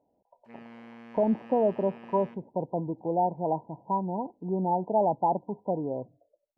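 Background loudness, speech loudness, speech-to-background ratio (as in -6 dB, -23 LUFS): -49.0 LUFS, -29.0 LUFS, 20.0 dB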